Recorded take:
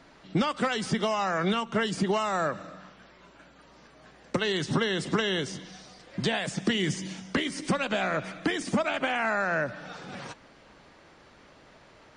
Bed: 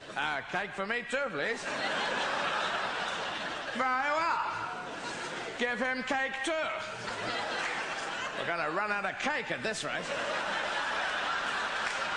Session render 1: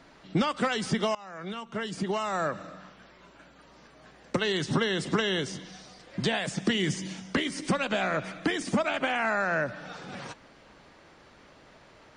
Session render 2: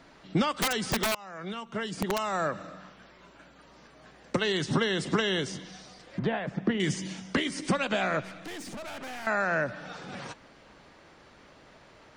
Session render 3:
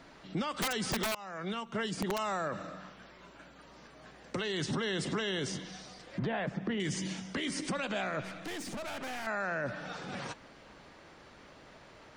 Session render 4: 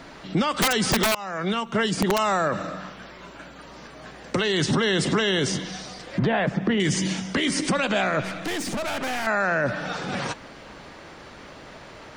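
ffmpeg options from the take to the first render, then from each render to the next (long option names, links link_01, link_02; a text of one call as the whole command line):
ffmpeg -i in.wav -filter_complex "[0:a]asplit=2[link_01][link_02];[link_01]atrim=end=1.15,asetpts=PTS-STARTPTS,afade=type=out:start_time=1.146:duration=0.004:curve=hsin:silence=0.0841395[link_03];[link_02]atrim=start=1.15,asetpts=PTS-STARTPTS,afade=type=in:duration=1.5:silence=0.0841395[link_04];[link_03][link_04]concat=n=2:v=0:a=1" out.wav
ffmpeg -i in.wav -filter_complex "[0:a]asettb=1/sr,asplit=3[link_01][link_02][link_03];[link_01]atrim=end=0.584[link_04];[link_02]atrim=start=0.58:end=2.31,asetpts=PTS-STARTPTS,afade=type=in:duration=0.004:curve=qsin,afade=type=out:start_time=1.726:duration=0.004:curve=qsin,aeval=exprs='(mod(10.6*val(0)+1,2)-1)/10.6':channel_layout=same[link_05];[link_03]atrim=start=2.306[link_06];[link_04][link_05]acrossfade=duration=0.004:curve1=hsin:curve2=qsin[link_07];[link_07][link_06]acrossfade=duration=0.004:curve1=qsin:curve2=hsin,asettb=1/sr,asplit=3[link_08][link_09][link_10];[link_08]atrim=end=6.194[link_11];[link_09]atrim=start=6.19:end=6.8,asetpts=PTS-STARTPTS,afade=type=in:duration=0.004:curve=qsin,afade=type=out:start_time=0.606:duration=0.004:curve=qsin,lowpass=1600[link_12];[link_10]atrim=start=6.796[link_13];[link_11][link_12]acrossfade=duration=0.004:curve1=hsin:curve2=qsin[link_14];[link_14][link_13]acrossfade=duration=0.004:curve1=qsin:curve2=hsin,asettb=1/sr,asplit=3[link_15][link_16][link_17];[link_15]atrim=end=8.214[link_18];[link_16]atrim=start=8.21:end=9.27,asetpts=PTS-STARTPTS,afade=type=in:duration=0.004:curve=qsin,afade=type=out:start_time=1.056:duration=0.004:curve=qsin,aeval=exprs='(tanh(79.4*val(0)+0.45)-tanh(0.45))/79.4':channel_layout=same[link_19];[link_17]atrim=start=9.266[link_20];[link_18][link_19]acrossfade=duration=0.004:curve1=hsin:curve2=qsin[link_21];[link_21][link_20]acrossfade=duration=0.004:curve1=qsin:curve2=hsin" out.wav
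ffmpeg -i in.wav -af "alimiter=level_in=2dB:limit=-24dB:level=0:latency=1:release=28,volume=-2dB" out.wav
ffmpeg -i in.wav -af "volume=11.5dB" out.wav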